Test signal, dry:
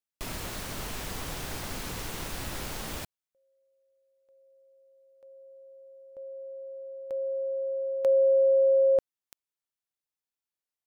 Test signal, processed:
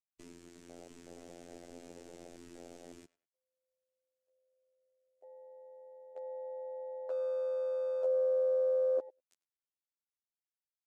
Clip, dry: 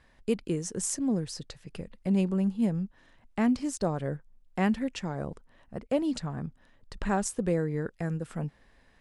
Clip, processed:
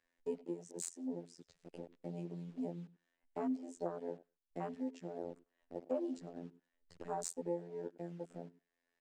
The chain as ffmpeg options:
ffmpeg -i in.wav -filter_complex "[0:a]equalizer=frequency=250:width_type=o:width=1:gain=6,equalizer=frequency=1000:width_type=o:width=1:gain=-7,equalizer=frequency=4000:width_type=o:width=1:gain=-5,equalizer=frequency=8000:width_type=o:width=1:gain=10,afftfilt=real='hypot(re,im)*cos(PI*b)':imag='0':win_size=2048:overlap=0.75,asplit=2[link_01][link_02];[link_02]acrusher=bits=6:mix=0:aa=0.000001,volume=-5.5dB[link_03];[link_01][link_03]amix=inputs=2:normalize=0,dynaudnorm=framelen=120:gausssize=13:maxgain=4dB,asplit=2[link_04][link_05];[link_05]adelay=100,lowpass=frequency=3600:poles=1,volume=-19.5dB,asplit=2[link_06][link_07];[link_07]adelay=100,lowpass=frequency=3600:poles=1,volume=0.25[link_08];[link_04][link_06][link_08]amix=inputs=3:normalize=0,aresample=32000,aresample=44100,acompressor=threshold=-38dB:ratio=2:attack=3.4:release=980:knee=1:detection=peak,afwtdn=0.00794,asoftclip=type=hard:threshold=-22dB,acrossover=split=350 7100:gain=0.0891 1 0.158[link_09][link_10][link_11];[link_09][link_10][link_11]amix=inputs=3:normalize=0,volume=3dB" out.wav

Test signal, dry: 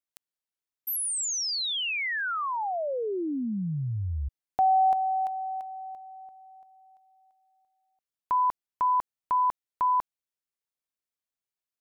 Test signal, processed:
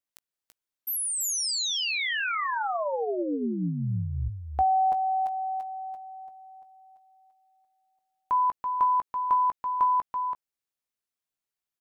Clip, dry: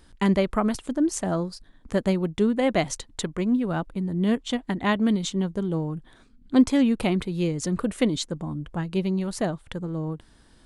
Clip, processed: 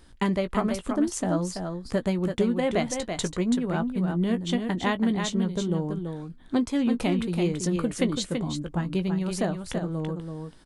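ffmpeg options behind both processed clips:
ffmpeg -i in.wav -filter_complex "[0:a]acompressor=threshold=-25dB:ratio=2.5:attack=92:release=387:detection=rms,asplit=2[link_01][link_02];[link_02]adelay=17,volume=-11dB[link_03];[link_01][link_03]amix=inputs=2:normalize=0,aecho=1:1:332:0.501" out.wav

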